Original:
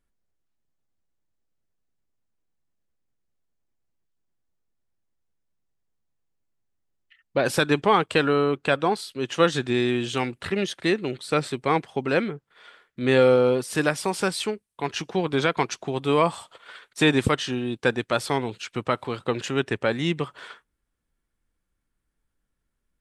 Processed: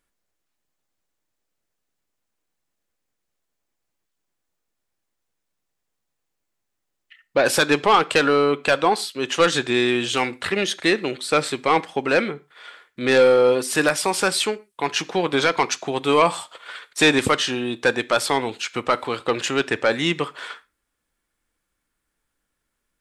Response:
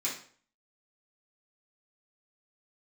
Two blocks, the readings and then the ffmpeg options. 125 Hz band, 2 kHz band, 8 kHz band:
−3.5 dB, +5.5 dB, +8.5 dB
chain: -filter_complex "[0:a]lowshelf=frequency=280:gain=-11.5,aeval=exprs='0.531*(cos(1*acos(clip(val(0)/0.531,-1,1)))-cos(1*PI/2))+0.106*(cos(5*acos(clip(val(0)/0.531,-1,1)))-cos(5*PI/2))':channel_layout=same,asplit=2[link_01][link_02];[1:a]atrim=start_sample=2205,afade=type=out:start_time=0.19:duration=0.01,atrim=end_sample=8820[link_03];[link_02][link_03]afir=irnorm=-1:irlink=0,volume=-19.5dB[link_04];[link_01][link_04]amix=inputs=2:normalize=0,volume=1.5dB"

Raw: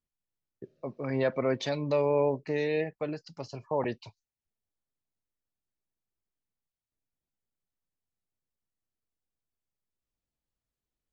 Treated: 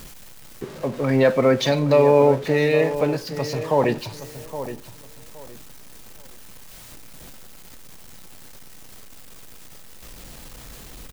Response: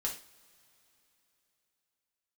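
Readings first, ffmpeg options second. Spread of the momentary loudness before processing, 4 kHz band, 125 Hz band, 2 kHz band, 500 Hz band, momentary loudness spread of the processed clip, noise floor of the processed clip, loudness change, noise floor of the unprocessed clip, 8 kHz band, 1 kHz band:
16 LU, +13.0 dB, +12.0 dB, +11.5 dB, +11.0 dB, 19 LU, −42 dBFS, +10.5 dB, below −85 dBFS, can't be measured, +11.5 dB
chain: -filter_complex "[0:a]aeval=exprs='val(0)+0.5*0.00708*sgn(val(0))':channel_layout=same,asplit=2[link_01][link_02];[link_02]adelay=818,lowpass=frequency=2000:poles=1,volume=-11.5dB,asplit=2[link_03][link_04];[link_04]adelay=818,lowpass=frequency=2000:poles=1,volume=0.25,asplit=2[link_05][link_06];[link_06]adelay=818,lowpass=frequency=2000:poles=1,volume=0.25[link_07];[link_01][link_03][link_05][link_07]amix=inputs=4:normalize=0,asplit=2[link_08][link_09];[1:a]atrim=start_sample=2205[link_10];[link_09][link_10]afir=irnorm=-1:irlink=0,volume=-9dB[link_11];[link_08][link_11]amix=inputs=2:normalize=0,volume=8dB"

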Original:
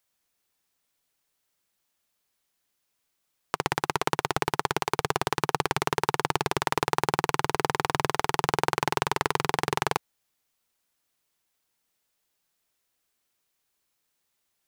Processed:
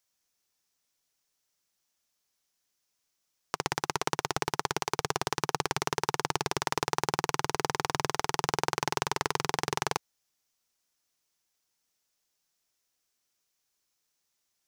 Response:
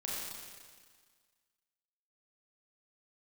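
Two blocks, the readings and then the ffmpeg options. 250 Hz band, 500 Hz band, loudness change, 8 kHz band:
−4.5 dB, −4.5 dB, −3.5 dB, +1.0 dB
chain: -af "equalizer=frequency=5800:width_type=o:width=0.73:gain=8,volume=-4.5dB"

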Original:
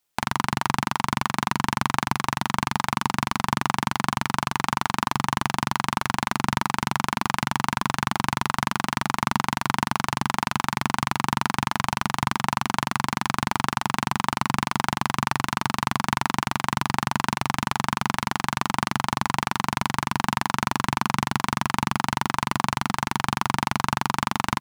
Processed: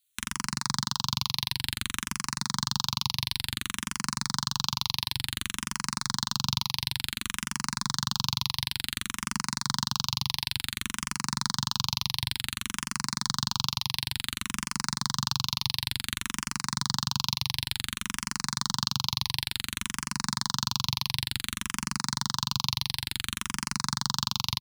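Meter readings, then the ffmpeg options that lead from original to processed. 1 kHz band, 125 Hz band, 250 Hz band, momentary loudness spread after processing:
−13.5 dB, −6.0 dB, −10.0 dB, 4 LU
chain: -filter_complex "[0:a]firequalizer=gain_entry='entry(110,0);entry(590,-25);entry(980,-8);entry(2200,-4);entry(4100,12);entry(6900,6)':delay=0.05:min_phase=1,asplit=2[link_01][link_02];[link_02]afreqshift=-0.56[link_03];[link_01][link_03]amix=inputs=2:normalize=1,volume=-1.5dB"

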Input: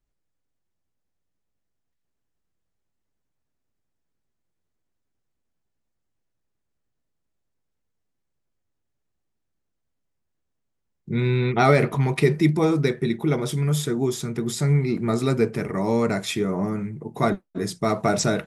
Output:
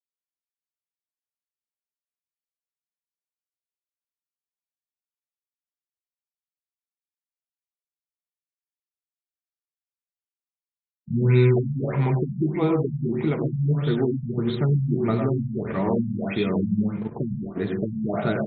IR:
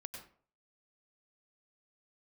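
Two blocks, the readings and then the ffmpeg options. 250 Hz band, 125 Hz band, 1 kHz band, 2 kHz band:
0.0 dB, +0.5 dB, −7.0 dB, −7.0 dB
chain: -filter_complex "[0:a]alimiter=limit=-14.5dB:level=0:latency=1:release=423,aeval=exprs='sgn(val(0))*max(abs(val(0))-0.00668,0)':channel_layout=same,acontrast=88[link_01];[1:a]atrim=start_sample=2205[link_02];[link_01][link_02]afir=irnorm=-1:irlink=0,afftfilt=real='re*lt(b*sr/1024,220*pow(4400/220,0.5+0.5*sin(2*PI*1.6*pts/sr)))':imag='im*lt(b*sr/1024,220*pow(4400/220,0.5+0.5*sin(2*PI*1.6*pts/sr)))':win_size=1024:overlap=0.75"

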